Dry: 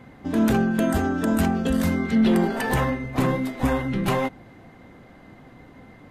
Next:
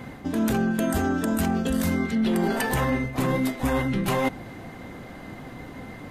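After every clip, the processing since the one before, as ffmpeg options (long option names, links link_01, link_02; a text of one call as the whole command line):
ffmpeg -i in.wav -af "highshelf=frequency=5000:gain=7,areverse,acompressor=threshold=-29dB:ratio=6,areverse,volume=7.5dB" out.wav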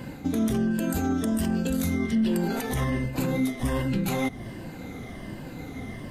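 ffmpeg -i in.wav -af "afftfilt=real='re*pow(10,8/40*sin(2*PI*(1.3*log(max(b,1)*sr/1024/100)/log(2)-(-1.3)*(pts-256)/sr)))':imag='im*pow(10,8/40*sin(2*PI*(1.3*log(max(b,1)*sr/1024/100)/log(2)-(-1.3)*(pts-256)/sr)))':win_size=1024:overlap=0.75,equalizer=frequency=1100:width=0.54:gain=-7,alimiter=limit=-20.5dB:level=0:latency=1:release=196,volume=3dB" out.wav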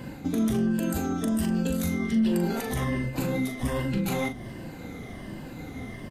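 ffmpeg -i in.wav -filter_complex "[0:a]asplit=2[link_01][link_02];[link_02]adelay=40,volume=-8dB[link_03];[link_01][link_03]amix=inputs=2:normalize=0,volume=-1.5dB" out.wav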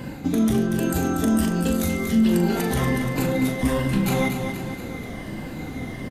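ffmpeg -i in.wav -af "aecho=1:1:238|476|714|952|1190|1428|1666:0.447|0.241|0.13|0.0703|0.038|0.0205|0.0111,volume=5dB" out.wav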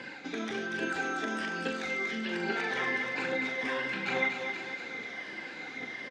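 ffmpeg -i in.wav -filter_complex "[0:a]highpass=500,equalizer=frequency=640:width_type=q:width=4:gain=-6,equalizer=frequency=1100:width_type=q:width=4:gain=-4,equalizer=frequency=1600:width_type=q:width=4:gain=8,equalizer=frequency=2300:width_type=q:width=4:gain=8,equalizer=frequency=3600:width_type=q:width=4:gain=4,equalizer=frequency=5200:width_type=q:width=4:gain=4,lowpass=frequency=6100:width=0.5412,lowpass=frequency=6100:width=1.3066,flanger=delay=0:depth=3.1:regen=72:speed=1.2:shape=triangular,acrossover=split=2900[link_01][link_02];[link_02]acompressor=threshold=-46dB:ratio=4:attack=1:release=60[link_03];[link_01][link_03]amix=inputs=2:normalize=0" out.wav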